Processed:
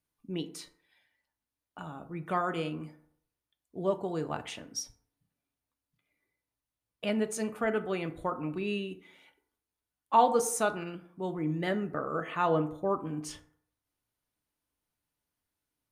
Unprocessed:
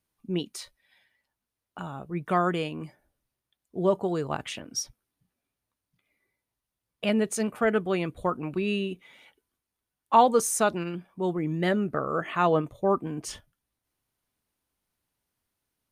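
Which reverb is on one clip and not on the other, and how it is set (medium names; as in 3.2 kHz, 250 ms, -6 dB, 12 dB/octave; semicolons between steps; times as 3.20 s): FDN reverb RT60 0.65 s, low-frequency decay 0.85×, high-frequency decay 0.45×, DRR 8 dB; trim -5.5 dB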